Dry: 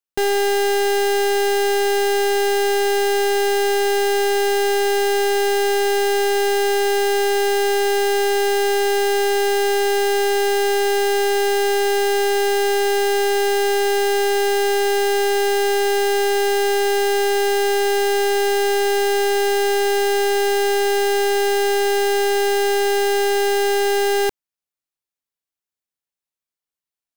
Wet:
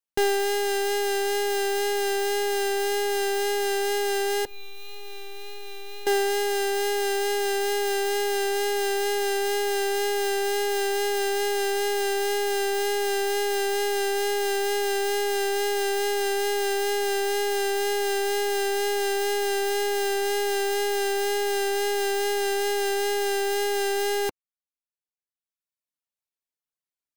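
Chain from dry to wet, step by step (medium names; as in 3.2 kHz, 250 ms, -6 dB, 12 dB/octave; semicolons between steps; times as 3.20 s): 4.45–6.07 s: inharmonic resonator 180 Hz, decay 0.23 s, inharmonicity 0.008; wow and flutter 19 cents; reverb removal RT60 1.2 s; trim -2.5 dB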